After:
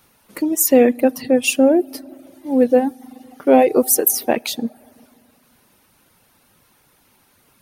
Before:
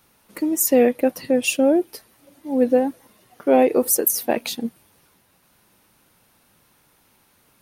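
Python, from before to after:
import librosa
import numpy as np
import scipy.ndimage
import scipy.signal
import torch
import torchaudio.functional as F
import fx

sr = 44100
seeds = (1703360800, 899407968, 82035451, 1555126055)

y = fx.rev_fdn(x, sr, rt60_s=1.9, lf_ratio=1.0, hf_ratio=0.45, size_ms=23.0, drr_db=14.5)
y = fx.dereverb_blind(y, sr, rt60_s=0.52)
y = y * 10.0 ** (3.5 / 20.0)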